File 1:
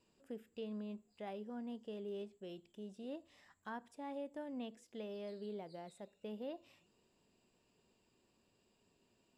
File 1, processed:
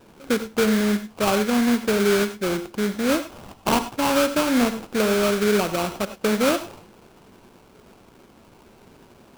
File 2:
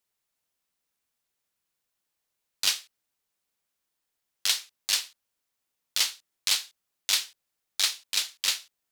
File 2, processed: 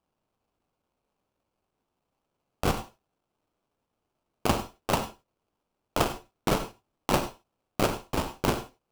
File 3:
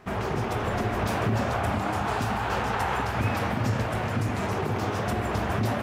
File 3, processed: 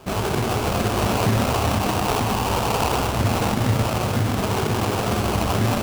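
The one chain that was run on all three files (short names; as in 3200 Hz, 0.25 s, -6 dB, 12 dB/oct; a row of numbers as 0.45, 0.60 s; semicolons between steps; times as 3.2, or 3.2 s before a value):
sample-rate reducer 1900 Hz, jitter 20%; non-linear reverb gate 0.12 s rising, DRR 11 dB; normalise peaks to -9 dBFS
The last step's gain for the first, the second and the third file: +25.0, +0.5, +5.5 dB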